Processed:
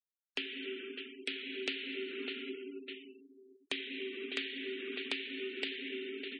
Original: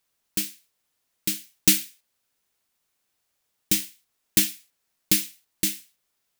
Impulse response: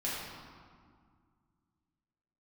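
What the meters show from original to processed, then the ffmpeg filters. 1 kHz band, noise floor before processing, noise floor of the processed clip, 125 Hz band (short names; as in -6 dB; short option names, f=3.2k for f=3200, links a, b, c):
n/a, -76 dBFS, under -85 dBFS, under -30 dB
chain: -filter_complex "[0:a]tiltshelf=f=780:g=-6.5,asplit=2[a][b];[1:a]atrim=start_sample=2205,lowshelf=f=280:g=2.5[c];[b][c]afir=irnorm=-1:irlink=0,volume=-6.5dB[d];[a][d]amix=inputs=2:normalize=0,highpass=f=180:t=q:w=0.5412,highpass=f=180:t=q:w=1.307,lowpass=f=3.1k:t=q:w=0.5176,lowpass=f=3.1k:t=q:w=0.7071,lowpass=f=3.1k:t=q:w=1.932,afreqshift=76,aecho=1:1:602|1204:0.0708|0.0234,acompressor=threshold=-44dB:ratio=8,asoftclip=type=hard:threshold=-33dB,afftfilt=real='re*gte(hypot(re,im),0.00158)':imag='im*gte(hypot(re,im),0.00158)':win_size=1024:overlap=0.75,volume=8dB"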